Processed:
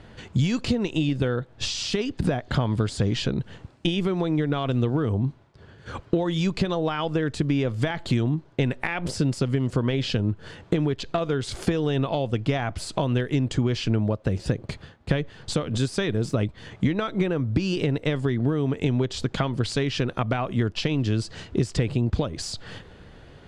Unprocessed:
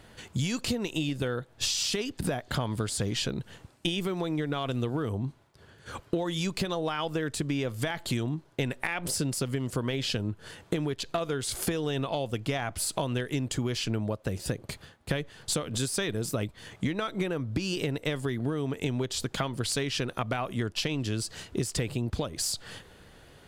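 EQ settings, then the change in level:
high-frequency loss of the air 96 metres
low-shelf EQ 390 Hz +5 dB
+3.5 dB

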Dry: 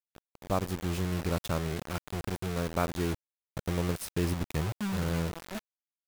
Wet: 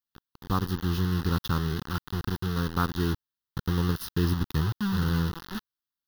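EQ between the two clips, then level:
phaser with its sweep stopped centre 2,300 Hz, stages 6
+6.0 dB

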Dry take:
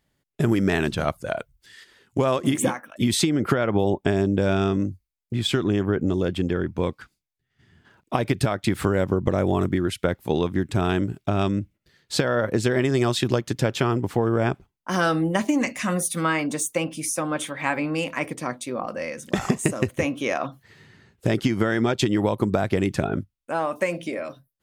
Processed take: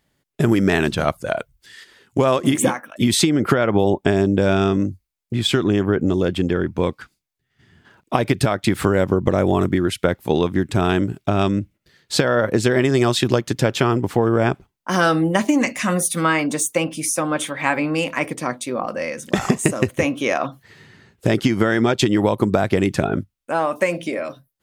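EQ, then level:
low-shelf EQ 110 Hz −4 dB
+5.0 dB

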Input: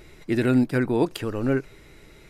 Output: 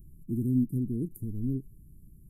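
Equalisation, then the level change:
inverse Chebyshev band-stop filter 790–3,800 Hz, stop band 70 dB
dynamic equaliser 140 Hz, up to −4 dB, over −41 dBFS, Q 2.2
dynamic equaliser 410 Hz, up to +5 dB, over −47 dBFS, Q 2
0.0 dB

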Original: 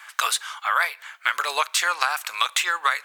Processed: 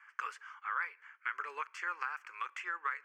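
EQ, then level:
four-pole ladder high-pass 310 Hz, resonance 50%
high-frequency loss of the air 190 metres
phaser with its sweep stopped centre 1,600 Hz, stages 4
−3.0 dB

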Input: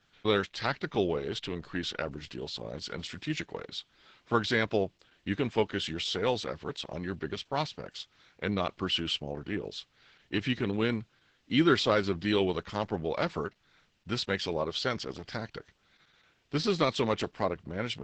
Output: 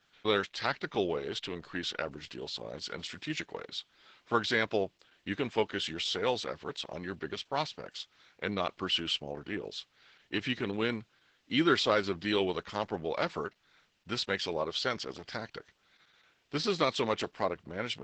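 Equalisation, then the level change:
low-shelf EQ 230 Hz −9 dB
0.0 dB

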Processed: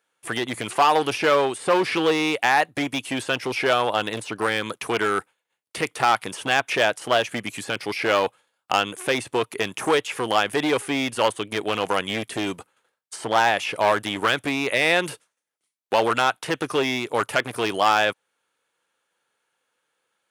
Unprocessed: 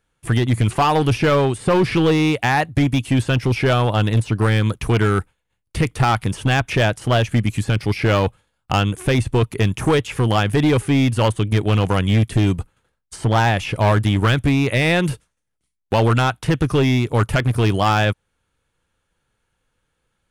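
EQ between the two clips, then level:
high-pass filter 440 Hz 12 dB per octave
0.0 dB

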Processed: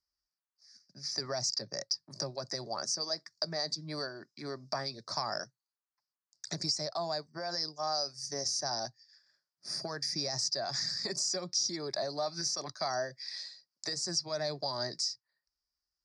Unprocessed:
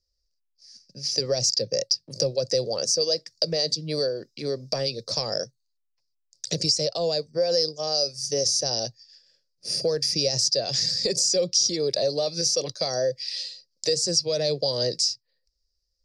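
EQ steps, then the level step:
resonant band-pass 1,100 Hz, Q 0.66
phaser with its sweep stopped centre 1,200 Hz, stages 4
+4.5 dB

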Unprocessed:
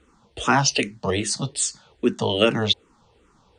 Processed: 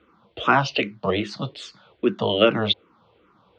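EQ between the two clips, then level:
loudspeaker in its box 150–3,200 Hz, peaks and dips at 150 Hz −5 dB, 250 Hz −8 dB, 420 Hz −6 dB, 860 Hz −7 dB, 1,800 Hz −8 dB, 2,700 Hz −4 dB
+5.0 dB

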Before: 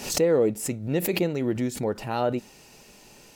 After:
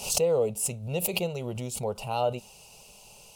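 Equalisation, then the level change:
parametric band 2,800 Hz +9 dB 0.31 octaves
parametric band 9,500 Hz +7 dB 0.42 octaves
phaser with its sweep stopped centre 720 Hz, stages 4
0.0 dB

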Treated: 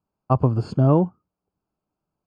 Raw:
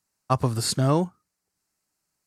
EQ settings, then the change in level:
moving average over 23 samples
high-frequency loss of the air 100 metres
+5.5 dB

